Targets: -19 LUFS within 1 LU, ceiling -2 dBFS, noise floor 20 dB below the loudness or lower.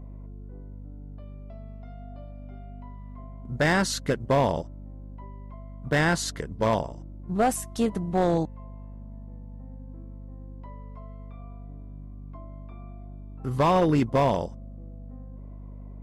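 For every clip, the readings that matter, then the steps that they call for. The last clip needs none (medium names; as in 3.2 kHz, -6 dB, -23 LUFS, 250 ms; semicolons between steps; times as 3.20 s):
clipped samples 0.7%; clipping level -15.5 dBFS; hum 50 Hz; highest harmonic 250 Hz; hum level -38 dBFS; loudness -25.5 LUFS; peak level -15.5 dBFS; loudness target -19.0 LUFS
-> clip repair -15.5 dBFS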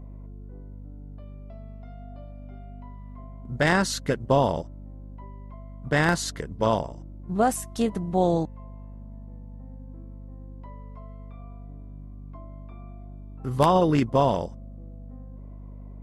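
clipped samples 0.0%; hum 50 Hz; highest harmonic 250 Hz; hum level -38 dBFS
-> hum notches 50/100/150/200/250 Hz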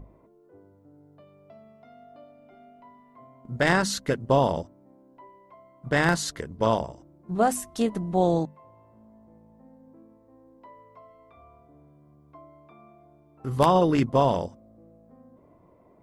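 hum not found; loudness -25.0 LUFS; peak level -6.0 dBFS; loudness target -19.0 LUFS
-> trim +6 dB; peak limiter -2 dBFS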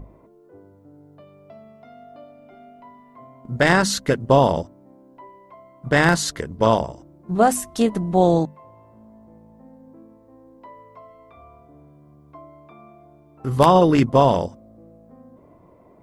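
loudness -19.0 LUFS; peak level -2.0 dBFS; noise floor -52 dBFS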